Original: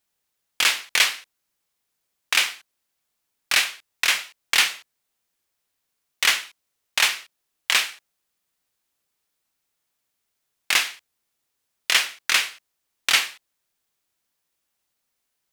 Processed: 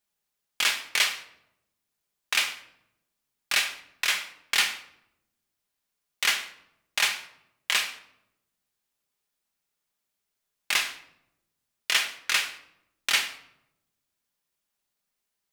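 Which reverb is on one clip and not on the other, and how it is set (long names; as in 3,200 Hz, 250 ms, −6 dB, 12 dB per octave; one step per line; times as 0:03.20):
rectangular room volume 2,600 cubic metres, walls furnished, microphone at 1.3 metres
level −5.5 dB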